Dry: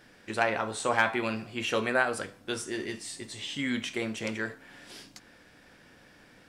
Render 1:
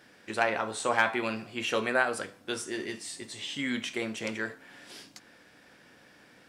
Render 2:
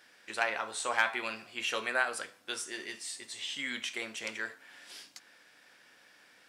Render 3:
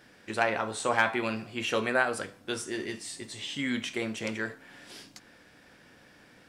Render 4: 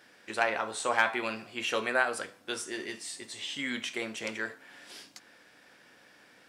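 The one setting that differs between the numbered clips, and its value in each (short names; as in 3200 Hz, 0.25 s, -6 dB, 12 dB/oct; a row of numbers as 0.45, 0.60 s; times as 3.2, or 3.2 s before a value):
HPF, cutoff: 160, 1300, 52, 470 Hz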